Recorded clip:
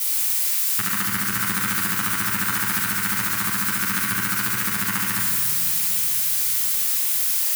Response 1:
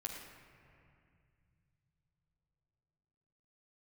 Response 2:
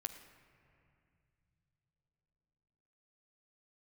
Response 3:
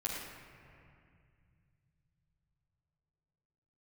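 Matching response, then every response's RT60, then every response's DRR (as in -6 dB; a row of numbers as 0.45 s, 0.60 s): 3; 2.4 s, 2.9 s, 2.3 s; -2.0 dB, 6.5 dB, -7.5 dB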